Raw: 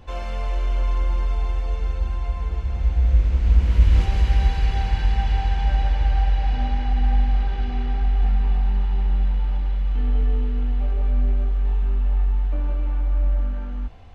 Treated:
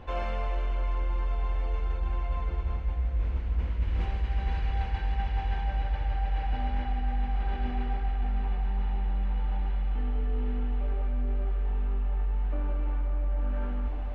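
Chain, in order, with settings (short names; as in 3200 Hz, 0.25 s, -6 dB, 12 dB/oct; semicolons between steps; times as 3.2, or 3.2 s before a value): tone controls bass -4 dB, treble -15 dB; diffused feedback echo 0.595 s, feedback 68%, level -12 dB; reverse; compressor 6:1, threshold -29 dBFS, peak gain reduction 16 dB; reverse; gain +3.5 dB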